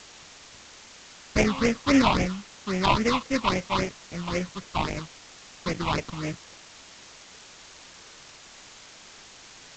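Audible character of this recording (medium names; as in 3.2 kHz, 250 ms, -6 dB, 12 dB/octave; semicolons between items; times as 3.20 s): aliases and images of a low sample rate 1.6 kHz, jitter 20%; phasing stages 6, 3.7 Hz, lowest notch 440–1100 Hz; a quantiser's noise floor 8-bit, dither triangular; G.722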